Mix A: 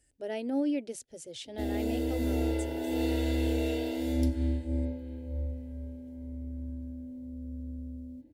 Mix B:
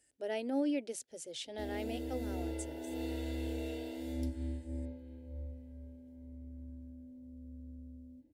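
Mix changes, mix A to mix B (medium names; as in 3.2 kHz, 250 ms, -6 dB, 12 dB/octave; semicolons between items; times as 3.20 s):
speech: add high-pass 340 Hz 6 dB/octave; background -9.5 dB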